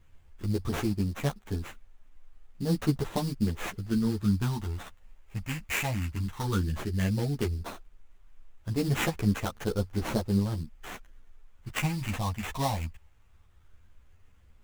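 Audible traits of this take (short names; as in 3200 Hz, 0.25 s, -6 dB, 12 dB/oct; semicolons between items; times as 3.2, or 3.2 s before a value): a quantiser's noise floor 12-bit, dither triangular; phasing stages 6, 0.14 Hz, lowest notch 370–4100 Hz; aliases and images of a low sample rate 4800 Hz, jitter 20%; a shimmering, thickened sound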